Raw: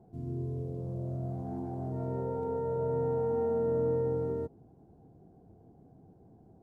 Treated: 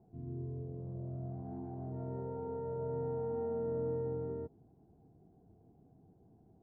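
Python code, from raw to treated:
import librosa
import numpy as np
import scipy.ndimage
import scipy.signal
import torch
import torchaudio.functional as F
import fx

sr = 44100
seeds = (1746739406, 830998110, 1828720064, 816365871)

y = fx.air_absorb(x, sr, metres=440.0)
y = fx.notch(y, sr, hz=530.0, q=12.0)
y = y * 10.0 ** (-5.5 / 20.0)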